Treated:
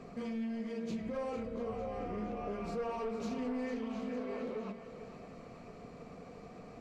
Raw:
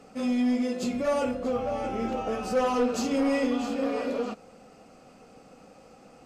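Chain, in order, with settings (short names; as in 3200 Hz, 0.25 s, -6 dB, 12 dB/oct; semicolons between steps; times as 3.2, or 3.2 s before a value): tone controls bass +6 dB, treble -8 dB; notches 50/100/150/200/250 Hz; in parallel at +2 dB: limiter -24.5 dBFS, peak gain reduction 8.5 dB; on the sum: compressor 2:1, threshold -39 dBFS, peak gain reduction 12 dB; on a send: thinning echo 0.416 s, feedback 52%, level -10 dB; on the sum: speed mistake 48 kHz file played as 44.1 kHz; Doppler distortion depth 0.1 ms; gain -6 dB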